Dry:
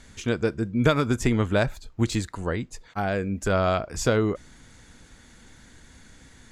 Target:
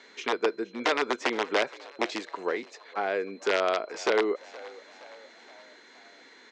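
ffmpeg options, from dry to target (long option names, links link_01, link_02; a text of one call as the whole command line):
ffmpeg -i in.wav -filter_complex "[0:a]asplit=2[link_01][link_02];[link_02]acompressor=threshold=-30dB:ratio=12,volume=0dB[link_03];[link_01][link_03]amix=inputs=2:normalize=0,aeval=exprs='val(0)+0.00251*sin(2*PI*4100*n/s)':channel_layout=same,aeval=exprs='(mod(3.76*val(0)+1,2)-1)/3.76':channel_layout=same,highpass=frequency=320:width=0.5412,highpass=frequency=320:width=1.3066,equalizer=frequency=420:width_type=q:width=4:gain=6,equalizer=frequency=990:width_type=q:width=4:gain=3,equalizer=frequency=2100:width_type=q:width=4:gain=5,equalizer=frequency=4400:width_type=q:width=4:gain=-3,lowpass=frequency=5300:width=0.5412,lowpass=frequency=5300:width=1.3066,asplit=5[link_04][link_05][link_06][link_07][link_08];[link_05]adelay=470,afreqshift=65,volume=-20dB[link_09];[link_06]adelay=940,afreqshift=130,volume=-25.2dB[link_10];[link_07]adelay=1410,afreqshift=195,volume=-30.4dB[link_11];[link_08]adelay=1880,afreqshift=260,volume=-35.6dB[link_12];[link_04][link_09][link_10][link_11][link_12]amix=inputs=5:normalize=0,volume=-5.5dB" out.wav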